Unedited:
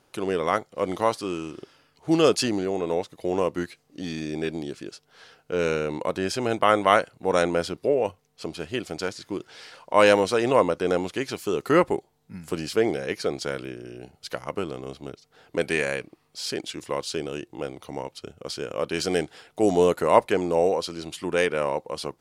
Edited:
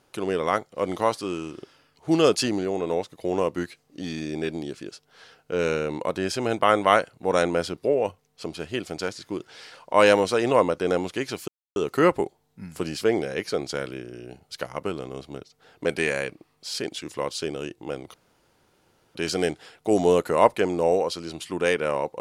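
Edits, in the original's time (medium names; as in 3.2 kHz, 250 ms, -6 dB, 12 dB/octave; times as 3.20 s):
11.48 s: insert silence 0.28 s
17.86–18.87 s: room tone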